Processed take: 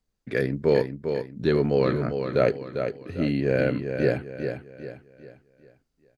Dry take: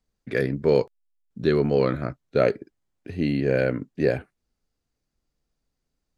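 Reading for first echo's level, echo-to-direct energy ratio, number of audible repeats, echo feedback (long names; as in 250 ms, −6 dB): −7.0 dB, −6.5 dB, 4, 39%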